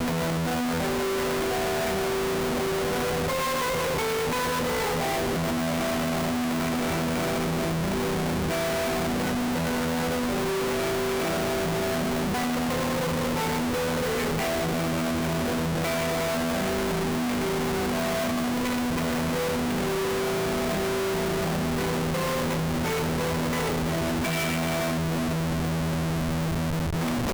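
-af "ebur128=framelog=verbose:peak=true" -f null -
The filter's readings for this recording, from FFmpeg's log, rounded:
Integrated loudness:
  I:         -26.4 LUFS
  Threshold: -36.4 LUFS
Loudness range:
  LRA:         0.5 LU
  Threshold: -46.4 LUFS
  LRA low:   -26.5 LUFS
  LRA high:  -26.1 LUFS
True peak:
  Peak:      -19.9 dBFS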